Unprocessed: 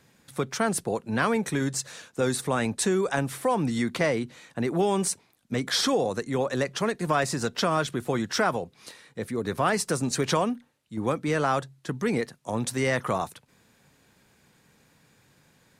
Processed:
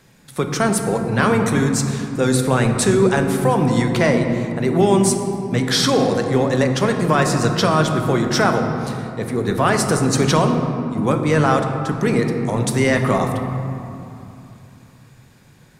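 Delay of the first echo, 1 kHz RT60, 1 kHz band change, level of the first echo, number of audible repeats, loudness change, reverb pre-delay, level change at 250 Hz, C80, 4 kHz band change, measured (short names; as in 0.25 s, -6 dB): none, 3.0 s, +8.0 dB, none, none, +9.0 dB, 5 ms, +10.5 dB, 6.5 dB, +7.0 dB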